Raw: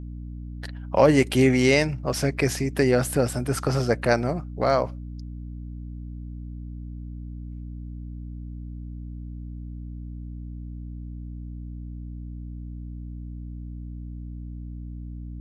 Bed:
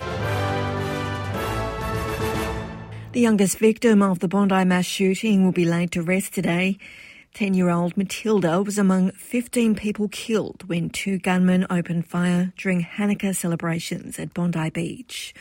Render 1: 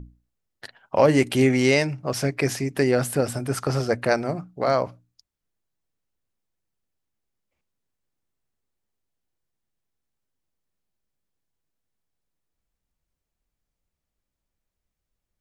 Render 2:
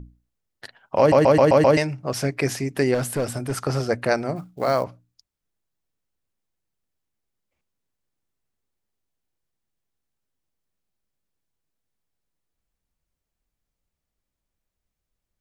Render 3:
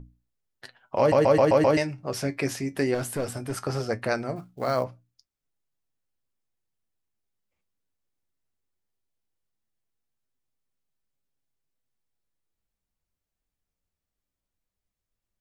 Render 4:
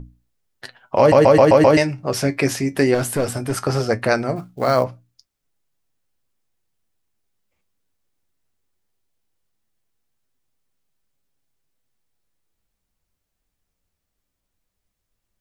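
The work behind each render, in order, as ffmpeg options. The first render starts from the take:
-af "bandreject=f=60:t=h:w=6,bandreject=f=120:t=h:w=6,bandreject=f=180:t=h:w=6,bandreject=f=240:t=h:w=6,bandreject=f=300:t=h:w=6"
-filter_complex "[0:a]asettb=1/sr,asplit=3[a][b][c];[a]atrim=end=2.944[d];[b]atrim=start=2.94:end=3.61,asetpts=PTS-STARTPTS,afade=t=in:d=0.004:c=qsin,afade=t=out:st=0.666:d=0.004:c=qsin,asoftclip=type=hard:threshold=-19dB[e];[c]atrim=start=3.606[f];[d][e]acrossfade=d=0.004:c1=hsin:c2=qsin[g];[g][f]acrossfade=d=0.004:c1=qsin:c2=hsin,asettb=1/sr,asplit=3[h][i][j];[h]atrim=end=4.364[k];[i]atrim=start=4.36:end=4.84,asetpts=PTS-STARTPTS,afade=t=in:d=0.004:c=qsin,afade=t=out:st=0.476:d=0.004:c=qsin,acrusher=bits=7:mode=log:mix=0:aa=0.000001[l];[j]atrim=start=4.836[m];[k][l]acrossfade=d=0.004:c1=hsin:c2=qsin[n];[n][m]acrossfade=d=0.004:c1=qsin:c2=hsin,asplit=7[o][p][q][r][s][t][u];[o]atrim=end=1.122[v];[p]atrim=start=0.988:end=1.122[w];[q]atrim=start=0.988:end=1.122[x];[r]atrim=start=0.988:end=1.122[y];[s]atrim=start=0.988:end=1.122[z];[t]atrim=start=0.988:end=1.122[aa];[u]atrim=start=1.768[ab];[v][w]acrossfade=d=0.004:c1=hsin:c2=hsin[ac];[ac][x]acrossfade=d=0.004:c1=hsin:c2=hsin[ad];[ad][y]acrossfade=d=0.004:c1=hsin:c2=hsin[ae];[ae][z]acrossfade=d=0.004:c1=hsin:c2=hsin[af];[af][aa]acrossfade=d=0.004:c1=hsin:c2=hsin[ag];[ag][ab]acrossfade=d=0.004:c1=hsin:c2=hsin"
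-af "flanger=delay=7.3:depth=3.6:regen=62:speed=0.18:shape=sinusoidal"
-af "volume=8.5dB,alimiter=limit=-3dB:level=0:latency=1"

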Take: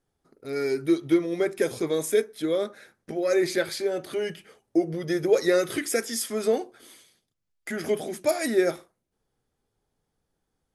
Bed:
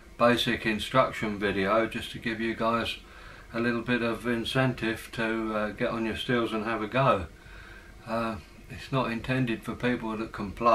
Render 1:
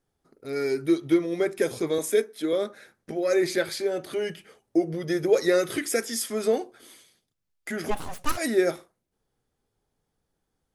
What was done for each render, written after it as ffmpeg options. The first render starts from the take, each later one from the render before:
-filter_complex "[0:a]asettb=1/sr,asplit=3[a][b][c];[a]atrim=end=1.984[d];[b]atrim=start=1.98:end=2.53,asetpts=PTS-STARTPTS,afade=t=in:d=0.004:c=qsin,afade=t=out:st=0.546:d=0.004:c=qsin,highpass=f=180:w=0.5412,highpass=f=180:w=1.3066[e];[c]atrim=start=2.526[f];[d][e]acrossfade=d=0.004:c1=hsin:c2=qsin[g];[g][f]acrossfade=d=0.004:c1=qsin:c2=hsin,asplit=3[h][i][j];[h]afade=t=out:st=7.9:d=0.02[k];[i]aeval=exprs='abs(val(0))':c=same,afade=t=in:st=7.9:d=0.02,afade=t=out:st=8.36:d=0.02[l];[j]afade=t=in:st=8.36:d=0.02[m];[k][l][m]amix=inputs=3:normalize=0"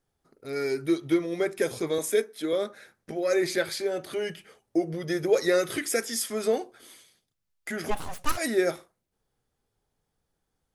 -af "equalizer=f=290:t=o:w=1.5:g=-3"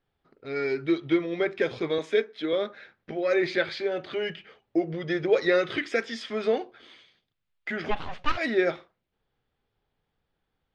-af "lowpass=f=3.4k:w=0.5412,lowpass=f=3.4k:w=1.3066,highshelf=f=2.4k:g=9"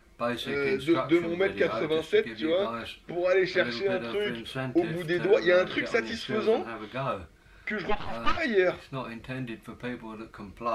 -filter_complex "[1:a]volume=-8dB[a];[0:a][a]amix=inputs=2:normalize=0"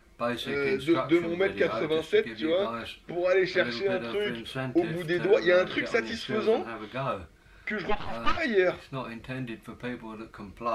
-af anull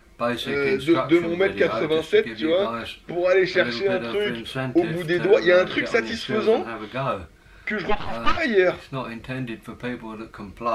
-af "volume=5.5dB"

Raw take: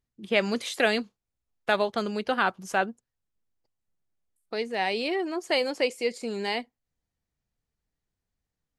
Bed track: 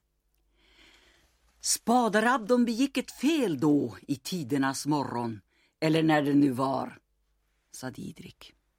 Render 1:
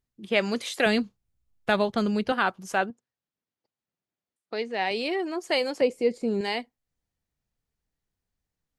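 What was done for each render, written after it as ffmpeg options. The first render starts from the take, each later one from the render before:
-filter_complex "[0:a]asettb=1/sr,asplit=3[a][b][c];[a]atrim=end=0.864[d];[b]atrim=start=0.86:end=2.32,asetpts=PTS-STARTPTS,afade=t=in:d=0.004:c=qsin,afade=t=out:st=1.456:d=0.004:c=qsin,bass=f=250:g=11,treble=f=4k:g=0[e];[c]atrim=start=2.316[f];[d][e]acrossfade=d=0.004:c1=hsin:c2=qsin[g];[g][f]acrossfade=d=0.004:c1=qsin:c2=hsin,asettb=1/sr,asplit=3[h][i][j];[h]atrim=end=2.904[k];[i]atrim=start=2.9:end=4.91,asetpts=PTS-STARTPTS,afade=t=in:d=0.004:c=qsin,afade=t=out:st=2.006:d=0.004:c=qsin,highpass=150,lowpass=5.3k[l];[j]atrim=start=4.906[m];[k][l]acrossfade=d=0.004:c1=hsin:c2=qsin[n];[n][m]acrossfade=d=0.004:c1=qsin:c2=hsin,asettb=1/sr,asplit=3[o][p][q];[o]atrim=end=5.814[r];[p]atrim=start=5.81:end=6.41,asetpts=PTS-STARTPTS,afade=t=in:d=0.004:c=qsin,afade=t=out:st=0.596:d=0.004:c=qsin,tiltshelf=f=850:g=8.5[s];[q]atrim=start=6.406[t];[r][s]acrossfade=d=0.004:c1=hsin:c2=qsin[u];[u][t]acrossfade=d=0.004:c1=qsin:c2=hsin"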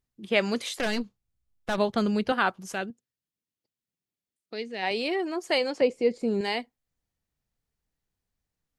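-filter_complex "[0:a]asettb=1/sr,asplit=3[a][b][c];[a]atrim=end=0.774[d];[b]atrim=start=0.77:end=1.78,asetpts=PTS-STARTPTS,afade=t=in:d=0.004:c=qsin,afade=t=out:st=1.006:d=0.004:c=qsin,aeval=exprs='(tanh(14.1*val(0)+0.65)-tanh(0.65))/14.1':c=same[e];[c]atrim=start=1.776[f];[d][e]acrossfade=d=0.004:c1=hsin:c2=qsin[g];[g][f]acrossfade=d=0.004:c1=qsin:c2=hsin,asplit=3[h][i][j];[h]afade=t=out:st=2.72:d=0.02[k];[i]equalizer=f=940:t=o:w=1.8:g=-11,afade=t=in:st=2.72:d=0.02,afade=t=out:st=4.82:d=0.02[l];[j]afade=t=in:st=4.82:d=0.02[m];[k][l][m]amix=inputs=3:normalize=0,asettb=1/sr,asplit=3[n][o][p];[n]atrim=end=5.584[q];[o]atrim=start=5.58:end=6.19,asetpts=PTS-STARTPTS,afade=t=in:d=0.004:c=qsin,afade=t=out:st=0.606:d=0.004:c=qsin,lowpass=6.9k[r];[p]atrim=start=6.186[s];[q][r]acrossfade=d=0.004:c1=hsin:c2=qsin[t];[t][s]acrossfade=d=0.004:c1=qsin:c2=hsin"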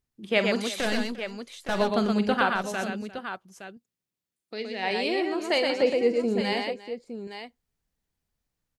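-af "aecho=1:1:46|120|349|865:0.237|0.631|0.126|0.299"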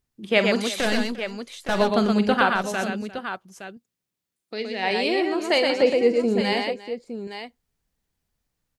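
-af "volume=4dB"

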